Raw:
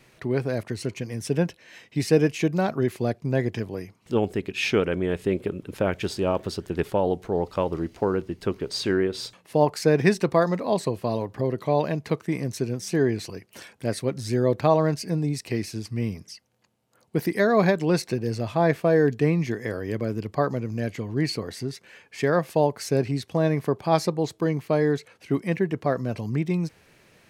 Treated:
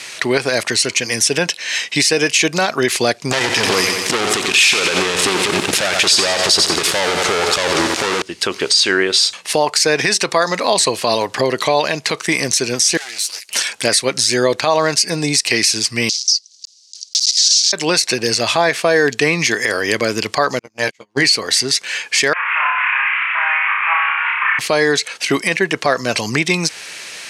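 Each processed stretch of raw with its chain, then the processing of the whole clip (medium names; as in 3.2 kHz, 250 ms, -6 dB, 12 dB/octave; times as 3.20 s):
3.31–8.22 s: waveshaping leveller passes 5 + bit-crushed delay 89 ms, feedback 55%, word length 7-bit, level -10 dB
12.97–13.49 s: comb filter that takes the minimum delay 8.7 ms + pre-emphasis filter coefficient 0.97 + compression 2.5:1, threshold -49 dBFS
16.09–17.73 s: block-companded coder 3-bit + Butterworth band-pass 5.1 kHz, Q 2.4 + tilt EQ +3 dB/octave
20.59–21.25 s: gate -26 dBFS, range -44 dB + doubling 15 ms -6 dB
22.33–24.59 s: one-bit delta coder 16 kbps, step -35 dBFS + elliptic band-pass 1–2.5 kHz, stop band 50 dB + flutter echo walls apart 5.2 m, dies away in 0.85 s
whole clip: frequency weighting ITU-R 468; compression 2:1, threshold -35 dBFS; loudness maximiser +23 dB; trim -2.5 dB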